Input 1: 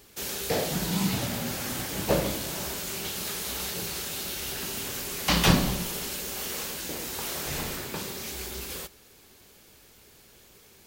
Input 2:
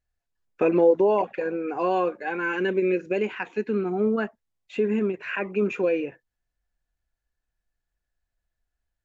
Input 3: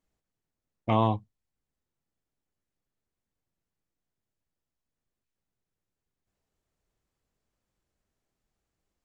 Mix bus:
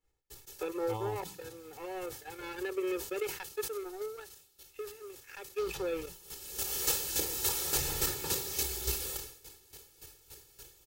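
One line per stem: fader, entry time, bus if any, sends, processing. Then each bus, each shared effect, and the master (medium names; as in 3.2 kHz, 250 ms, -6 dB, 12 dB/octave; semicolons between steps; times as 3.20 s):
-0.5 dB, 0.30 s, no bus, no send, tone controls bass +3 dB, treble +7 dB; band-stop 2.1 kHz, Q 19; square tremolo 3.5 Hz, depth 60%, duty 15%; auto duck -24 dB, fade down 0.25 s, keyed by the second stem
1.89 s -9 dB -> 2.67 s -1 dB -> 3.83 s -1 dB -> 4.34 s -13 dB -> 5.21 s -13 dB -> 5.67 s -0.5 dB, 0.00 s, bus A, no send, steep high-pass 310 Hz 48 dB/octave; power-law waveshaper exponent 2
-11.0 dB, 0.00 s, bus A, no send, none
bus A: 0.0 dB, upward compressor, threshold -44 dBFS; peak limiter -27.5 dBFS, peak gain reduction 9.5 dB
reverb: none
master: expander -53 dBFS; comb 2.3 ms, depth 79%; decay stretcher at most 99 dB/s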